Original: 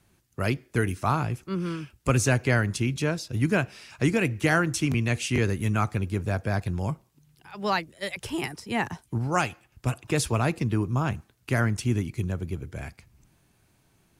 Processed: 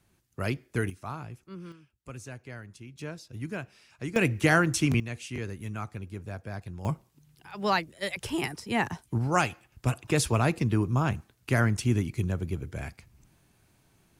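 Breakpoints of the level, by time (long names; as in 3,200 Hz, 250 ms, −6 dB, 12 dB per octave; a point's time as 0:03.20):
−4 dB
from 0:00.90 −13 dB
from 0:01.72 −20 dB
from 0:02.99 −12 dB
from 0:04.16 +0.5 dB
from 0:05.00 −11 dB
from 0:06.85 0 dB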